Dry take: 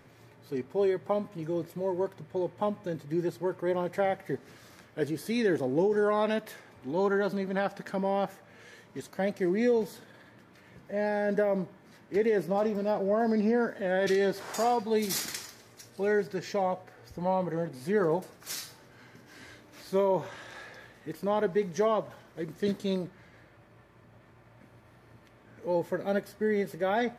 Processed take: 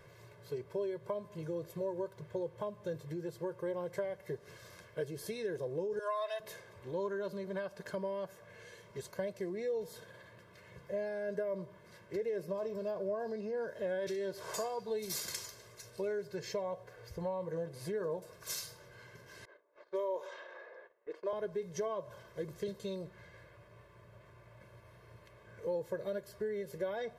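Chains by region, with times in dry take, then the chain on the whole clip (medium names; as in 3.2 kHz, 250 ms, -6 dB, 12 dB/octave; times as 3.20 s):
5.99–6.40 s: high-pass 660 Hz 24 dB/octave + comb 3 ms, depth 83%
19.45–21.33 s: level-controlled noise filter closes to 1 kHz, open at -24.5 dBFS + high-pass 350 Hz 24 dB/octave + gate -57 dBFS, range -15 dB
whole clip: compression 6:1, threshold -33 dBFS; comb 1.9 ms, depth 88%; dynamic bell 2 kHz, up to -4 dB, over -52 dBFS, Q 0.95; trim -3.5 dB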